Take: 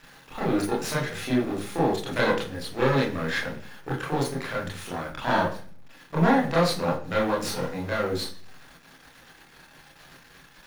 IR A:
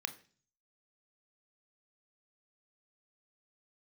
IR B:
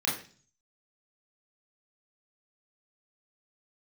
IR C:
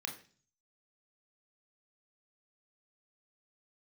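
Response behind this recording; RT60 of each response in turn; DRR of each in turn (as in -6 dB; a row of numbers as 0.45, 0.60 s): B; 0.40, 0.40, 0.40 s; 9.5, -5.0, 2.5 dB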